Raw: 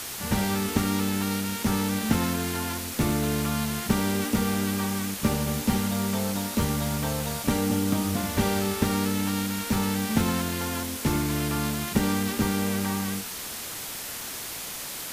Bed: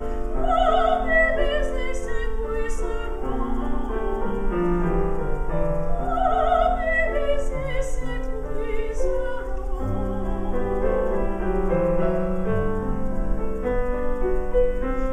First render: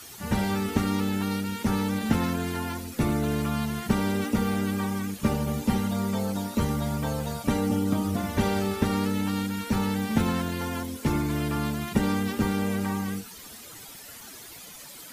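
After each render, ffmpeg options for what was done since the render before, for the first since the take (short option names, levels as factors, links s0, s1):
-af "afftdn=nr=13:nf=-36"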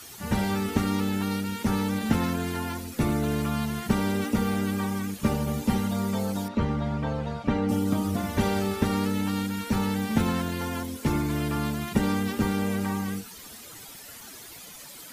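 -filter_complex "[0:a]asettb=1/sr,asplit=3[s0][s1][s2];[s0]atrim=end=6.484[s3];[s1]atrim=start=6.48:end=7.69,asetpts=PTS-STARTPTS,afade=t=in:d=0.004:c=qsin,afade=t=out:st=1.206:d=0.004:c=qsin,lowpass=3000[s4];[s2]atrim=start=7.686[s5];[s3][s4]acrossfade=d=0.004:c1=hsin:c2=qsin[s6];[s6][s5]acrossfade=d=0.004:c1=qsin:c2=hsin"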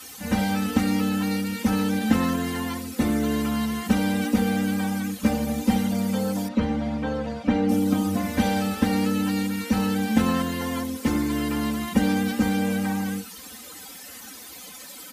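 -af "highpass=63,aecho=1:1:3.9:0.96"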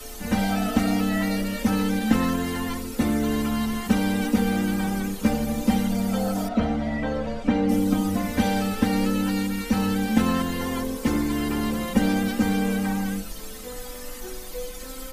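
-filter_complex "[1:a]volume=0.188[s0];[0:a][s0]amix=inputs=2:normalize=0"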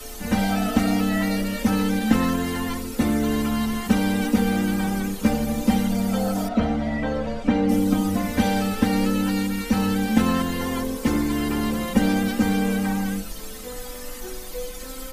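-af "volume=1.19"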